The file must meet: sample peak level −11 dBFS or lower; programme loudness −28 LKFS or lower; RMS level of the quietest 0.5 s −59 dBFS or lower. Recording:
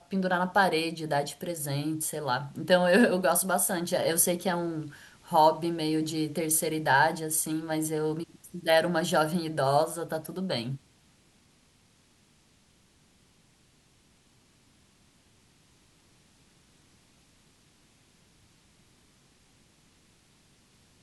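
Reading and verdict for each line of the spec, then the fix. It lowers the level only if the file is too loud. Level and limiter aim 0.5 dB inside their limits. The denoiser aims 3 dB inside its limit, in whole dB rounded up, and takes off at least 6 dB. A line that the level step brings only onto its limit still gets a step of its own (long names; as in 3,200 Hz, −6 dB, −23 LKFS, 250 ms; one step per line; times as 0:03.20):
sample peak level −9.0 dBFS: out of spec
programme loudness −27.0 LKFS: out of spec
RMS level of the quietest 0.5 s −64 dBFS: in spec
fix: level −1.5 dB
brickwall limiter −11.5 dBFS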